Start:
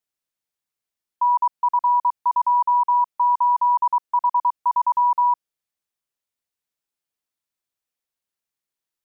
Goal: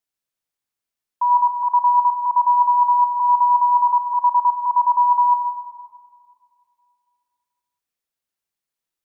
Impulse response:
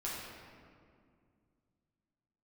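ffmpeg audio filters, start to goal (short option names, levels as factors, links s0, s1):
-filter_complex "[0:a]asplit=2[s0][s1];[1:a]atrim=start_sample=2205,adelay=84[s2];[s1][s2]afir=irnorm=-1:irlink=0,volume=0.355[s3];[s0][s3]amix=inputs=2:normalize=0"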